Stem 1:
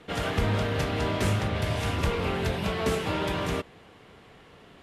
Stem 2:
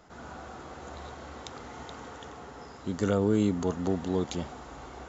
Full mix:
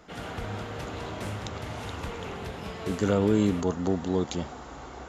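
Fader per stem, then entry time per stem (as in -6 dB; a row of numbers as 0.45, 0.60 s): -10.0, +2.0 dB; 0.00, 0.00 s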